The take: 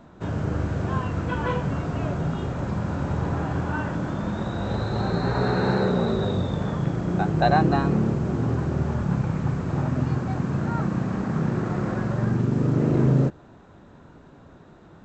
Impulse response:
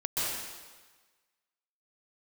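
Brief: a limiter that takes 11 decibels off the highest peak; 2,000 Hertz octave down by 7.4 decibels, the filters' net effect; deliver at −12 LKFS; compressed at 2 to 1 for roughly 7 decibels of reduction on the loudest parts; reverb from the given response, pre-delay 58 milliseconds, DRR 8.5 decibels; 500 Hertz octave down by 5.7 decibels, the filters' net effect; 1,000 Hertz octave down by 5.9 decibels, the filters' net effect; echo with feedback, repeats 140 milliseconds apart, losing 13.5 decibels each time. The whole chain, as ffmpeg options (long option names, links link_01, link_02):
-filter_complex "[0:a]equalizer=frequency=500:width_type=o:gain=-6.5,equalizer=frequency=1000:width_type=o:gain=-3.5,equalizer=frequency=2000:width_type=o:gain=-8.5,acompressor=threshold=-30dB:ratio=2,alimiter=level_in=4.5dB:limit=-24dB:level=0:latency=1,volume=-4.5dB,aecho=1:1:140|280:0.211|0.0444,asplit=2[link_01][link_02];[1:a]atrim=start_sample=2205,adelay=58[link_03];[link_02][link_03]afir=irnorm=-1:irlink=0,volume=-16.5dB[link_04];[link_01][link_04]amix=inputs=2:normalize=0,volume=24dB"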